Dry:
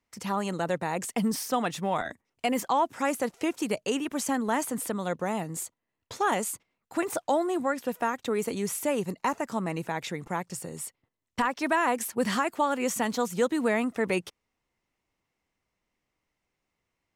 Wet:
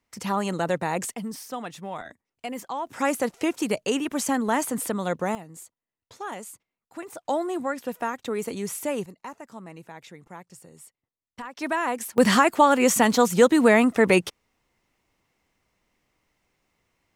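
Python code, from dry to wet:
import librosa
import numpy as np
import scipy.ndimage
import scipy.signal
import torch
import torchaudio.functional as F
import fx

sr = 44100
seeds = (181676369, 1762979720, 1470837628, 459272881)

y = fx.gain(x, sr, db=fx.steps((0.0, 3.5), (1.14, -6.5), (2.87, 3.5), (5.35, -9.0), (7.25, -0.5), (9.06, -11.0), (11.57, -1.0), (12.18, 9.0)))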